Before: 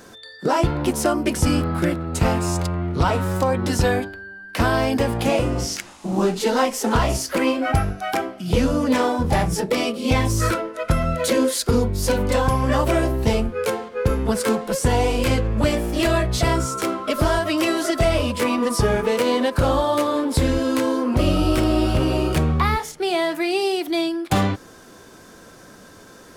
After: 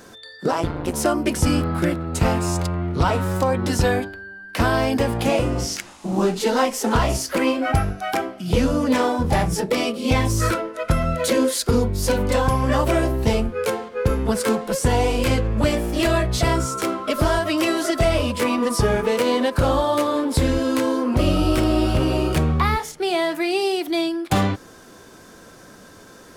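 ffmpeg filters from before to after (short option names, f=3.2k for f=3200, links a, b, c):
-filter_complex "[0:a]asplit=3[a][b][c];[a]afade=t=out:st=0.5:d=0.02[d];[b]tremolo=f=170:d=0.947,afade=t=in:st=0.5:d=0.02,afade=t=out:st=0.92:d=0.02[e];[c]afade=t=in:st=0.92:d=0.02[f];[d][e][f]amix=inputs=3:normalize=0"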